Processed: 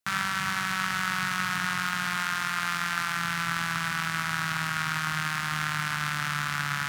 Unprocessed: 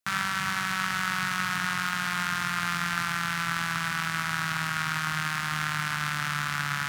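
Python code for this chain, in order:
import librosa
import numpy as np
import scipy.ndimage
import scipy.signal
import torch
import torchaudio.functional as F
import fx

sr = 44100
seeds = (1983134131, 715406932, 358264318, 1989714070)

y = fx.bass_treble(x, sr, bass_db=-6, treble_db=0, at=(2.17, 3.17))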